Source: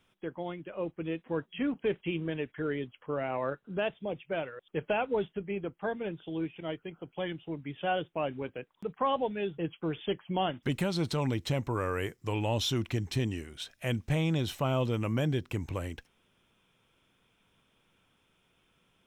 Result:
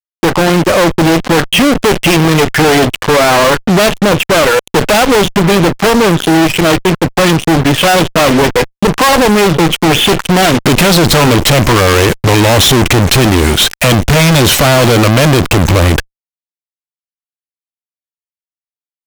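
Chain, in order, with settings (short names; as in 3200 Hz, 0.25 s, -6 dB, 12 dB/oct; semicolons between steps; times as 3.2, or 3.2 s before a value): added harmonics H 5 -38 dB, 6 -11 dB, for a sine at -18.5 dBFS; fuzz box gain 57 dB, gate -52 dBFS; gain +7 dB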